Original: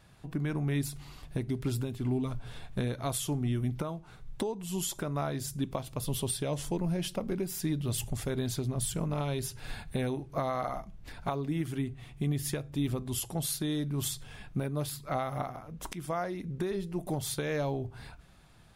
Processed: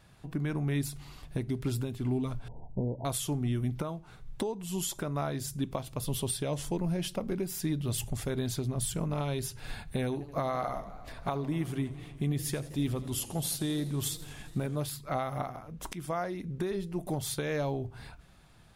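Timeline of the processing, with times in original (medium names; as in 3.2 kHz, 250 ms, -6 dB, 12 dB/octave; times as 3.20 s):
2.48–3.05 s: brick-wall FIR low-pass 1 kHz
10.03–14.80 s: modulated delay 84 ms, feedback 78%, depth 161 cents, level -17.5 dB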